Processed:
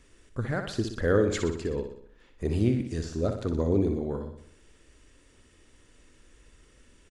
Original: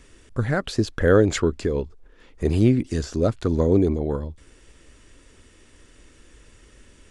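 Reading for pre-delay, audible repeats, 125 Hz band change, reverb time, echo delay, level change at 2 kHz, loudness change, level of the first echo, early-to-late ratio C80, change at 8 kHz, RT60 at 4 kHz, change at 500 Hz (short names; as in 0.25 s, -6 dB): none, 5, -6.5 dB, none, 61 ms, -6.5 dB, -6.5 dB, -7.5 dB, none, -6.5 dB, none, -6.5 dB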